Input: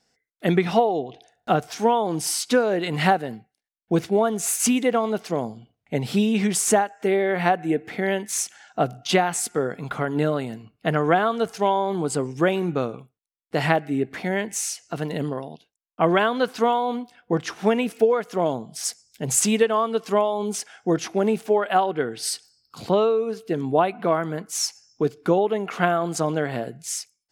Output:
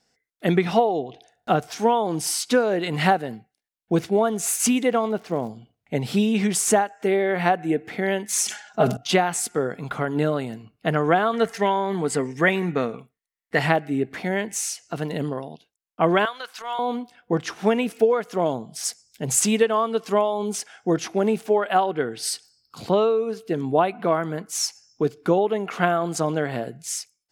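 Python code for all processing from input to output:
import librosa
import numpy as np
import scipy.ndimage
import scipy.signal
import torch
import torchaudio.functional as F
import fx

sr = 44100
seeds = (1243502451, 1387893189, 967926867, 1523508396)

y = fx.high_shelf(x, sr, hz=3700.0, db=-12.0, at=(5.07, 5.48), fade=0.02)
y = fx.dmg_crackle(y, sr, seeds[0], per_s=260.0, level_db=-40.0, at=(5.07, 5.48), fade=0.02)
y = fx.chain(y, sr, fx.comb(ms=4.8, depth=0.88),
    fx.sustainer(db_per_s=110.0), at=(8.28, 8.97))
y = fx.chain(y, sr, fx.peak_eq(hz=1900.0, db=14.5, octaves=0.37),
    fx.comb(ms=4.4, depth=0.34), at=(11.33, 13.59))
y = fx.chain(y, sr, fx.highpass(hz=1100.0, slope=12),
    fx.transient(attack_db=-11, sustain_db=-3), at=(16.25, 16.79))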